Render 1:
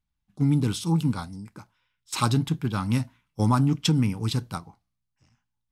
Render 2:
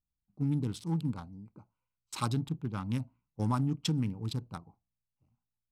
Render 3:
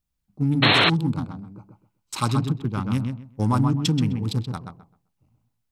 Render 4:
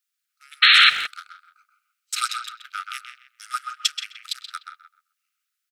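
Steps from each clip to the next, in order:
local Wiener filter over 25 samples; trim -8.5 dB
filtered feedback delay 129 ms, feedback 22%, low-pass 2.9 kHz, level -5 dB; painted sound noise, 0.62–0.90 s, 260–4300 Hz -26 dBFS; trim +8.5 dB
brick-wall FIR high-pass 1.2 kHz; speakerphone echo 170 ms, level -11 dB; trim +6 dB

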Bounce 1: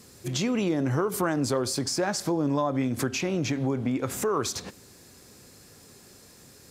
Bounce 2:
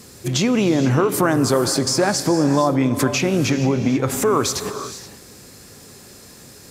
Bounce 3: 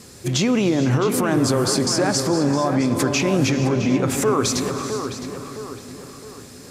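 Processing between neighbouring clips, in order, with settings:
gated-style reverb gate 500 ms rising, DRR 9.5 dB; trim +8.5 dB
low-pass 12 kHz 12 dB/octave; peak limiter -10.5 dBFS, peak gain reduction 7 dB; filtered feedback delay 663 ms, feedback 45%, low-pass 3.1 kHz, level -7.5 dB

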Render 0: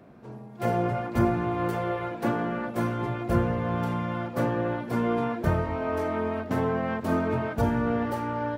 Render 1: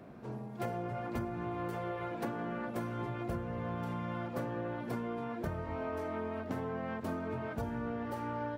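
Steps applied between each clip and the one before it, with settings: compression 12:1, threshold -34 dBFS, peak gain reduction 16.5 dB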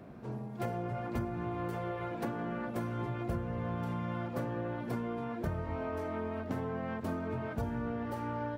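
bass shelf 160 Hz +5 dB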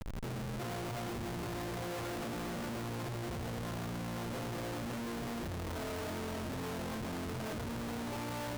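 Schmitt trigger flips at -44.5 dBFS; trim -2.5 dB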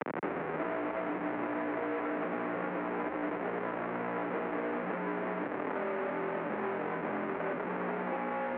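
mistuned SSB -51 Hz 310–2300 Hz; three bands compressed up and down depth 100%; trim +7.5 dB

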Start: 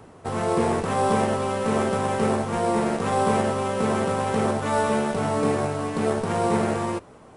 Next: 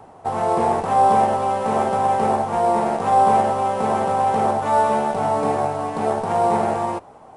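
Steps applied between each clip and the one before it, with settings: peaking EQ 790 Hz +14 dB 0.78 oct; trim -3 dB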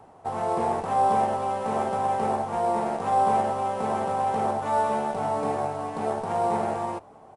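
echo from a far wall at 290 m, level -27 dB; trim -6.5 dB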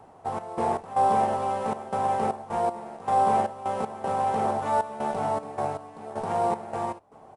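trance gate "xx.x.xxxx.xx.x.." 78 bpm -12 dB

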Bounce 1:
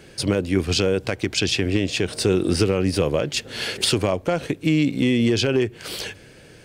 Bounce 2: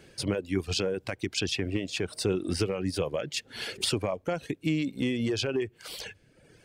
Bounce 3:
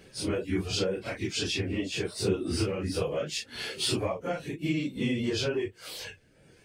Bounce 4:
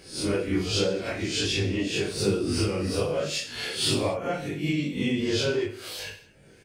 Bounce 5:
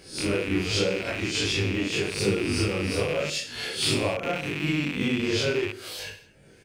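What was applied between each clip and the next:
reverb removal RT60 1 s; trim -7.5 dB
phase randomisation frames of 100 ms
reverse spectral sustain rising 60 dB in 0.40 s; reverse bouncing-ball echo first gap 20 ms, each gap 1.4×, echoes 5
rattle on loud lows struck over -39 dBFS, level -21 dBFS

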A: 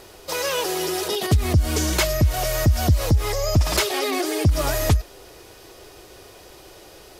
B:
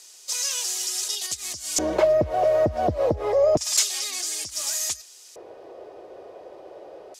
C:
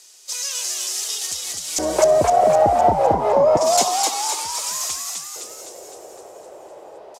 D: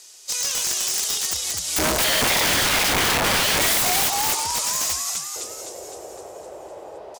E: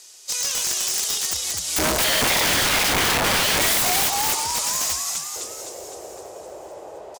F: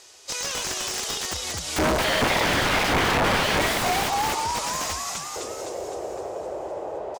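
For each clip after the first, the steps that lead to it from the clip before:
LFO band-pass square 0.28 Hz 570–7000 Hz; band-stop 1.4 kHz, Q 22; trim +9 dB
dynamic bell 830 Hz, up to +5 dB, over -35 dBFS, Q 1; on a send: frequency-shifting echo 256 ms, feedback 57%, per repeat +84 Hz, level -3 dB
peaking EQ 68 Hz +10.5 dB 1.5 oct; integer overflow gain 17 dB; trim +2 dB
feedback delay 452 ms, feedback 57%, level -22 dB
low-pass 1.6 kHz 6 dB/octave; in parallel at +2 dB: compression, threshold -34 dBFS, peak gain reduction 12.5 dB

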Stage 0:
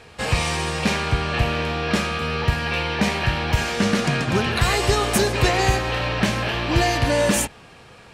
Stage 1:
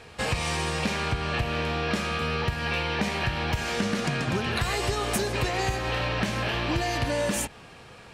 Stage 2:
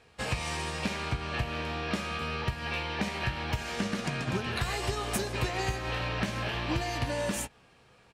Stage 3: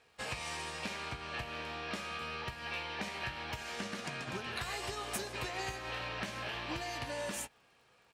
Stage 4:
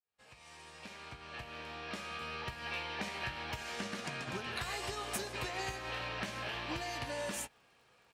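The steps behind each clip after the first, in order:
compression, threshold -22 dBFS, peak gain reduction 9 dB; trim -1.5 dB
doubling 16 ms -12 dB; upward expansion 1.5:1, over -42 dBFS; trim -3 dB
crackle 130 per s -59 dBFS; bass shelf 300 Hz -10 dB; trim -5 dB
fade-in on the opening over 2.63 s

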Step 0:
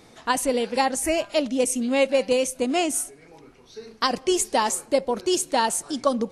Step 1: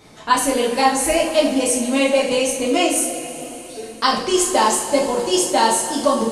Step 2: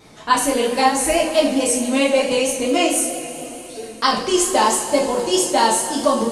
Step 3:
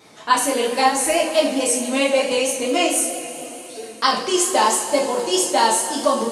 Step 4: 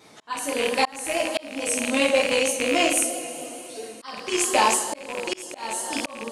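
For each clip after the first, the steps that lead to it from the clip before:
two-slope reverb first 0.45 s, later 4 s, from -16 dB, DRR -5 dB
vibrato 4.5 Hz 33 cents
high-pass 310 Hz 6 dB/octave
rattle on loud lows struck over -33 dBFS, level -10 dBFS; slow attack 512 ms; trim -2.5 dB

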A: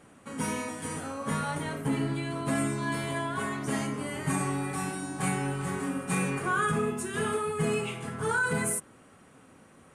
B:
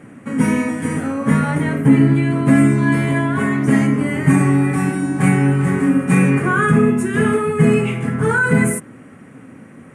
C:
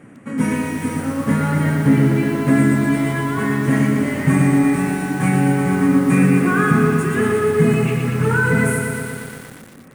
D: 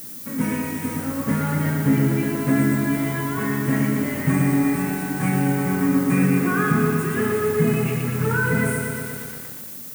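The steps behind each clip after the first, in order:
graphic EQ 125/250/500/2000/4000 Hz +11/+12/+4/+11/-7 dB; trim +4.5 dB
bit-crushed delay 118 ms, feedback 80%, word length 6-bit, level -5 dB; trim -3 dB
added noise violet -32 dBFS; trim -4.5 dB

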